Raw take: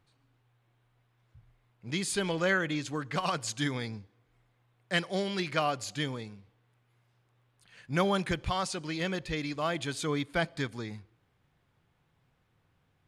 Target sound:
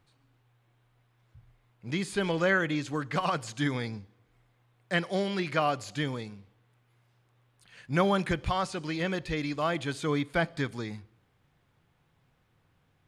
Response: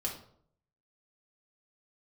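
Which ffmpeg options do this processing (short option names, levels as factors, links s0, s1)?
-filter_complex "[0:a]acrossover=split=2600[s0][s1];[s1]acompressor=threshold=0.00708:ratio=4:attack=1:release=60[s2];[s0][s2]amix=inputs=2:normalize=0,asplit=2[s3][s4];[1:a]atrim=start_sample=2205[s5];[s4][s5]afir=irnorm=-1:irlink=0,volume=0.0631[s6];[s3][s6]amix=inputs=2:normalize=0,volume=1.26"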